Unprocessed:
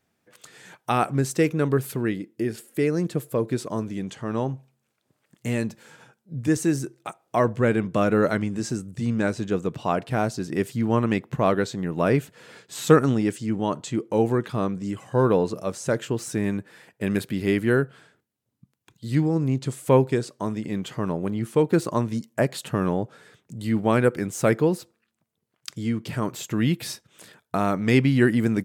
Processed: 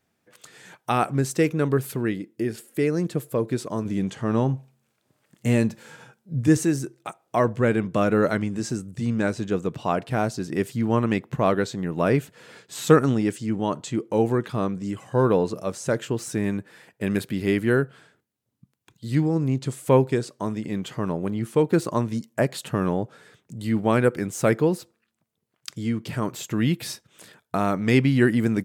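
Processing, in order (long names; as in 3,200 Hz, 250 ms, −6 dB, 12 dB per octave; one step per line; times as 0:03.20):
0:03.85–0:06.65: harmonic and percussive parts rebalanced harmonic +6 dB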